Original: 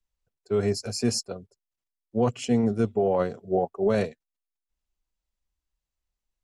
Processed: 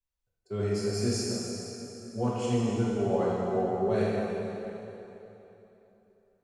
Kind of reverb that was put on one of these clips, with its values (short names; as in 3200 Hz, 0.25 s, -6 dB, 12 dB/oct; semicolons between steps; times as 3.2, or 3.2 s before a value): plate-style reverb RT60 3.3 s, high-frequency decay 0.85×, DRR -7.5 dB; gain -10.5 dB